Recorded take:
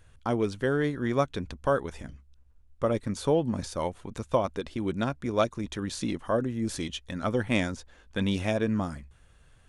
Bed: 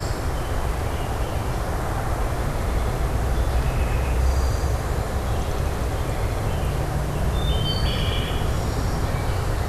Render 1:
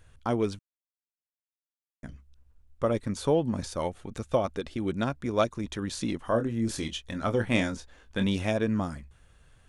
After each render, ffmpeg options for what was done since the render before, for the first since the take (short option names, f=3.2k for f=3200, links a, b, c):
-filter_complex "[0:a]asettb=1/sr,asplit=3[a][b][c];[a]atrim=end=3.814[d];[b]atrim=start=3.81:end=4.92,asetpts=PTS-STARTPTS,afade=t=in:d=0.004:c=qsin,afade=t=out:st=1.106:d=0.004:c=qsin,asuperstop=centerf=990:order=4:qfactor=7.2[e];[c]atrim=start=4.916[f];[d][e]acrossfade=d=0.004:c1=hsin:c2=qsin[g];[g][f]acrossfade=d=0.004:c1=qsin:c2=hsin,asettb=1/sr,asplit=3[h][i][j];[h]atrim=end=6.244[k];[i]atrim=start=6.24:end=8.27,asetpts=PTS-STARTPTS,afade=t=in:d=0.004:c=qsin,afade=t=out:st=2.026:d=0.004:c=qsin,asplit=2[l][m];[m]adelay=26,volume=-8dB[n];[l][n]amix=inputs=2:normalize=0,atrim=end_sample=89523[o];[j]atrim=start=8.266[p];[k][o]acrossfade=d=0.004:c1=hsin:c2=qsin[q];[q][p]acrossfade=d=0.004:c1=qsin:c2=hsin,asplit=3[r][s][t];[r]atrim=end=0.59,asetpts=PTS-STARTPTS,afade=t=out:st=0.586:d=0.004:c=hsin[u];[s]atrim=start=0.59:end=2.03,asetpts=PTS-STARTPTS,volume=0[v];[t]atrim=start=2.03,asetpts=PTS-STARTPTS,afade=t=in:d=0.004:c=hsin[w];[u][v][w]concat=n=3:v=0:a=1"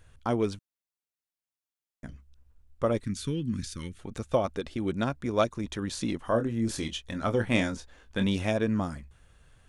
-filter_complex "[0:a]asettb=1/sr,asplit=3[a][b][c];[a]atrim=end=3.044[d];[b]atrim=start=3.04:end=3.99,asetpts=PTS-STARTPTS,afade=t=in:d=0.004:c=qsin,afade=t=out:st=0.946:d=0.004:c=qsin,asuperstop=centerf=700:order=4:qfactor=0.5[e];[c]atrim=start=3.986[f];[d][e]acrossfade=d=0.004:c1=hsin:c2=qsin[g];[g][f]acrossfade=d=0.004:c1=qsin:c2=hsin"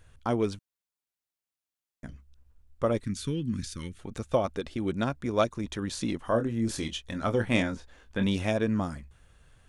-filter_complex "[0:a]asettb=1/sr,asplit=3[a][b][c];[a]atrim=end=7.624[d];[b]atrim=start=7.62:end=8.23,asetpts=PTS-STARTPTS,afade=t=in:d=0.004:c=qsin,afade=t=out:st=0.606:d=0.004:c=qsin,acrossover=split=3200[e][f];[f]acompressor=threshold=-54dB:ratio=4:attack=1:release=60[g];[e][g]amix=inputs=2:normalize=0[h];[c]atrim=start=8.226[i];[d][h]acrossfade=d=0.004:c1=hsin:c2=qsin[j];[j][i]acrossfade=d=0.004:c1=qsin:c2=hsin"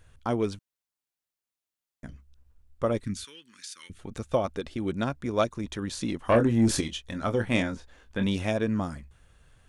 -filter_complex "[0:a]asettb=1/sr,asplit=3[a][b][c];[a]atrim=end=3.244[d];[b]atrim=start=3.24:end=3.9,asetpts=PTS-STARTPTS,afade=t=in:d=0.004:c=qsin,afade=t=out:st=0.656:d=0.004:c=qsin,highpass=1.2k[e];[c]atrim=start=3.896[f];[d][e]acrossfade=d=0.004:c1=hsin:c2=qsin[g];[g][f]acrossfade=d=0.004:c1=qsin:c2=hsin,asettb=1/sr,asplit=3[h][i][j];[h]atrim=end=6.294[k];[i]atrim=start=6.29:end=6.81,asetpts=PTS-STARTPTS,afade=t=in:d=0.004:c=qsin,afade=t=out:st=0.516:d=0.004:c=qsin,aeval=exprs='0.188*sin(PI/2*1.58*val(0)/0.188)':c=same[l];[j]atrim=start=6.806[m];[k][l]acrossfade=d=0.004:c1=hsin:c2=qsin[n];[n][m]acrossfade=d=0.004:c1=qsin:c2=hsin"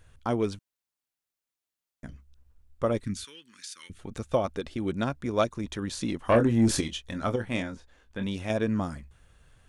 -filter_complex "[0:a]asplit=3[a][b][c];[a]atrim=end=7.362[d];[b]atrim=start=7.358:end=8.502,asetpts=PTS-STARTPTS,volume=-5dB[e];[c]atrim=start=8.498[f];[d][e]acrossfade=d=0.004:c1=hsin:c2=hsin[g];[g][f]acrossfade=d=0.004:c1=hsin:c2=hsin"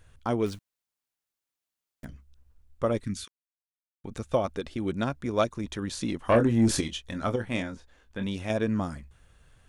-filter_complex "[0:a]asettb=1/sr,asplit=3[a][b][c];[a]atrim=end=0.464[d];[b]atrim=start=0.46:end=2.05,asetpts=PTS-STARTPTS,afade=t=in:d=0.004:c=qsin,afade=t=out:st=1.586:d=0.004:c=qsin,acrusher=bits=4:mode=log:mix=0:aa=0.000001[e];[c]atrim=start=2.046[f];[d][e]acrossfade=d=0.004:c1=hsin:c2=qsin[g];[g][f]acrossfade=d=0.004:c1=qsin:c2=hsin,asplit=3[h][i][j];[h]atrim=end=3.28,asetpts=PTS-STARTPTS,afade=t=out:st=3.276:d=0.004:c=hsin[k];[i]atrim=start=3.28:end=4.04,asetpts=PTS-STARTPTS,volume=0[l];[j]atrim=start=4.04,asetpts=PTS-STARTPTS,afade=t=in:d=0.004:c=hsin[m];[k][l][m]concat=n=3:v=0:a=1"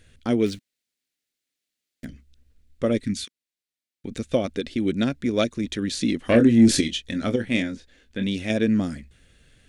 -af "equalizer=f=250:t=o:w=1:g=9,equalizer=f=500:t=o:w=1:g=4,equalizer=f=1k:t=o:w=1:g=-11,equalizer=f=2k:t=o:w=1:g=8,equalizer=f=4k:t=o:w=1:g=7,equalizer=f=8k:t=o:w=1:g=4"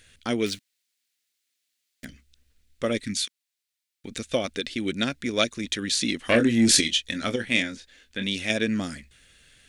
-af "tiltshelf=f=900:g=-6.5"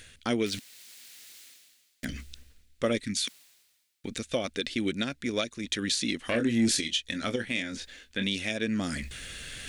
-af "areverse,acompressor=mode=upward:threshold=-27dB:ratio=2.5,areverse,alimiter=limit=-16.5dB:level=0:latency=1:release=470"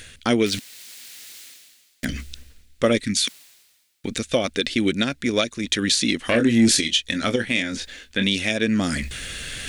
-af "volume=8.5dB"